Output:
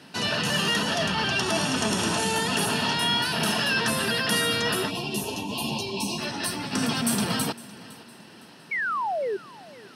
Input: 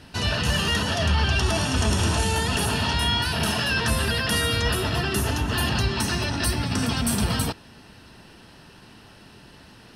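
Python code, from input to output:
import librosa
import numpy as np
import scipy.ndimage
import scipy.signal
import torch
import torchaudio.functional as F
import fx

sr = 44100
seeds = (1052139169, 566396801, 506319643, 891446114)

p1 = fx.spec_erase(x, sr, start_s=4.89, length_s=1.29, low_hz=1100.0, high_hz=2300.0)
p2 = scipy.signal.sosfilt(scipy.signal.butter(4, 150.0, 'highpass', fs=sr, output='sos'), p1)
p3 = fx.spec_paint(p2, sr, seeds[0], shape='fall', start_s=8.71, length_s=0.66, low_hz=370.0, high_hz=2300.0, level_db=-27.0)
p4 = p3 + fx.echo_feedback(p3, sr, ms=509, feedback_pct=37, wet_db=-20.0, dry=0)
y = fx.ensemble(p4, sr, at=(4.85, 6.72), fade=0.02)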